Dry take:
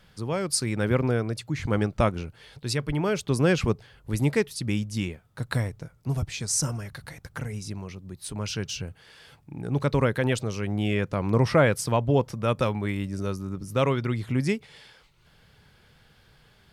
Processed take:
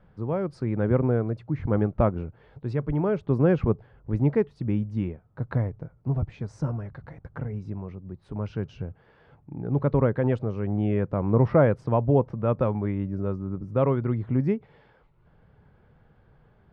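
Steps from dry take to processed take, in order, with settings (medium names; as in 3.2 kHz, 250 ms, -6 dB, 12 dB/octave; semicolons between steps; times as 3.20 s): low-pass 1 kHz 12 dB/octave; trim +1.5 dB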